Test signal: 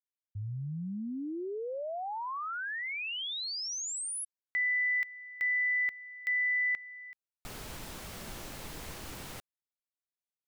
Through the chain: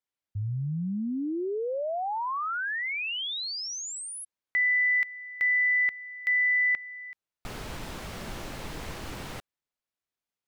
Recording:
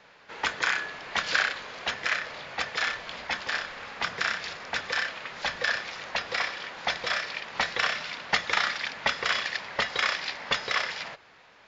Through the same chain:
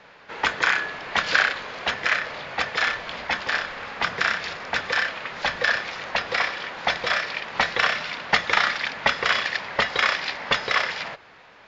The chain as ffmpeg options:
-af "lowpass=f=3.7k:p=1,volume=6.5dB"

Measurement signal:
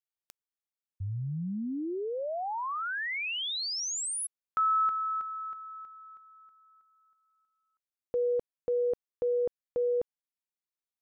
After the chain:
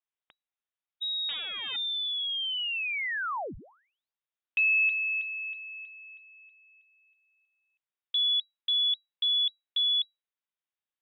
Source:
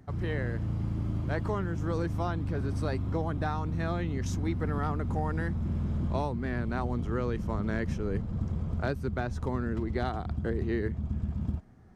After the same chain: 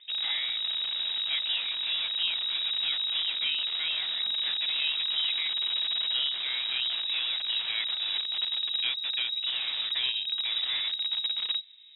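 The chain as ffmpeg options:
-filter_complex "[0:a]acrossover=split=120|330|1300[a][b][c][d];[b]aeval=exprs='(mod(53.1*val(0)+1,2)-1)/53.1':c=same[e];[a][e][c][d]amix=inputs=4:normalize=0,lowpass=f=3.3k:t=q:w=0.5098,lowpass=f=3.3k:t=q:w=0.6013,lowpass=f=3.3k:t=q:w=0.9,lowpass=f=3.3k:t=q:w=2.563,afreqshift=-3900,volume=2dB"

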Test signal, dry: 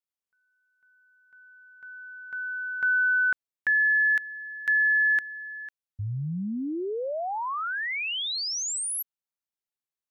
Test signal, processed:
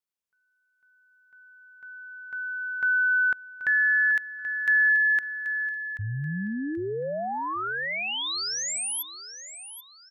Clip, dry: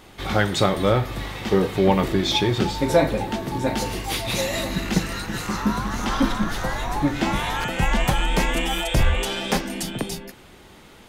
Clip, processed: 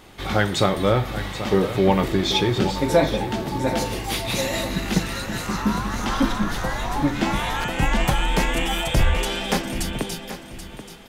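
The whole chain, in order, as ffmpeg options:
-af "aecho=1:1:782|1564|2346:0.251|0.0754|0.0226"

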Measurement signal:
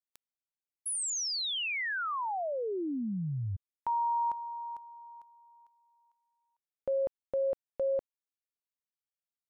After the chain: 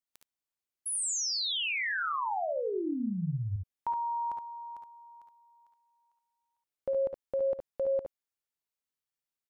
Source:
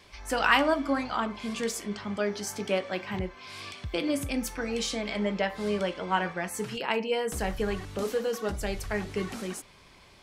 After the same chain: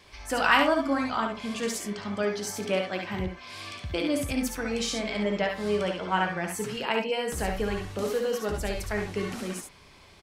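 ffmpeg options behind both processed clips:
-af "aecho=1:1:58|70:0.376|0.531"

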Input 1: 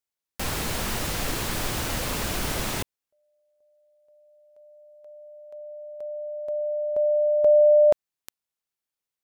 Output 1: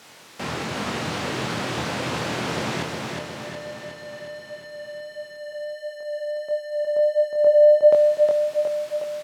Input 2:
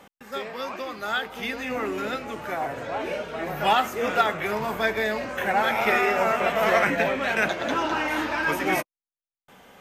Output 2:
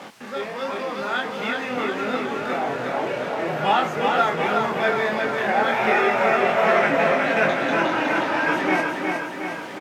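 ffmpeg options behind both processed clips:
-filter_complex "[0:a]aeval=exprs='val(0)+0.5*0.0211*sgn(val(0))':c=same,acrossover=split=8900[a][b];[b]acompressor=threshold=-41dB:ratio=4:attack=1:release=60[c];[a][c]amix=inputs=2:normalize=0,highpass=f=110:w=0.5412,highpass=f=110:w=1.3066,aemphasis=mode=reproduction:type=50fm,flanger=delay=22.5:depth=2.7:speed=1.5,asplit=2[d][e];[e]aecho=0:1:363|726|1089|1452|1815|2178|2541|2904:0.631|0.372|0.22|0.13|0.0765|0.0451|0.0266|0.0157[f];[d][f]amix=inputs=2:normalize=0,volume=3.5dB"

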